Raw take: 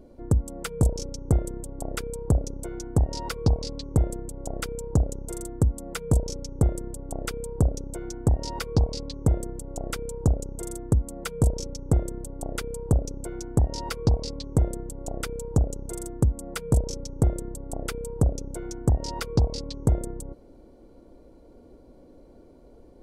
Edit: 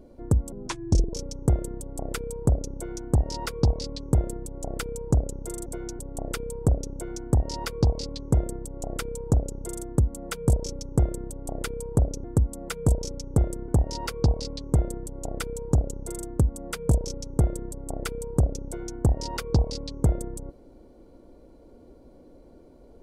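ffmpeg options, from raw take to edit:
-filter_complex "[0:a]asplit=7[s0][s1][s2][s3][s4][s5][s6];[s0]atrim=end=0.524[s7];[s1]atrim=start=0.52:end=0.96,asetpts=PTS-STARTPTS,asetrate=31752,aresample=44100[s8];[s2]atrim=start=0.956:end=5.492[s9];[s3]atrim=start=13.178:end=13.512[s10];[s4]atrim=start=6.928:end=13.182[s11];[s5]atrim=start=5.488:end=6.932[s12];[s6]atrim=start=13.508[s13];[s7][s8]acrossfade=d=0.004:c1=hsin:c2=hsin[s14];[s14][s9]acrossfade=d=0.004:c1=hsin:c2=hsin[s15];[s15][s10]acrossfade=d=0.004:c1=hsin:c2=hsin[s16];[s16][s11]acrossfade=d=0.004:c1=hsin:c2=hsin[s17];[s17][s12]acrossfade=d=0.004:c1=hsin:c2=hsin[s18];[s18][s13]acrossfade=d=0.004:c1=hsin:c2=hsin"

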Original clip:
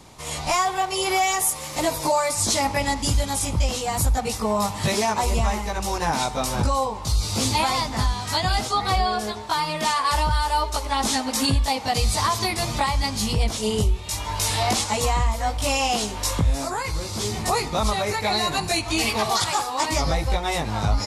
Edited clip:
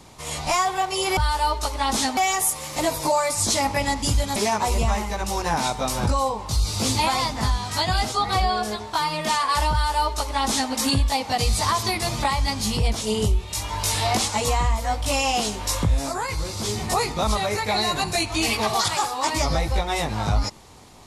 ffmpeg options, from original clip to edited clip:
-filter_complex "[0:a]asplit=4[s0][s1][s2][s3];[s0]atrim=end=1.172[s4];[s1]atrim=start=10.278:end=11.282[s5];[s2]atrim=start=1.168:end=3.362[s6];[s3]atrim=start=4.918[s7];[s4][s5]acrossfade=d=0.004:c1=hsin:c2=hsin[s8];[s8][s6]acrossfade=d=0.004:c1=hsin:c2=hsin[s9];[s9][s7]acrossfade=d=0.004:c1=hsin:c2=hsin"

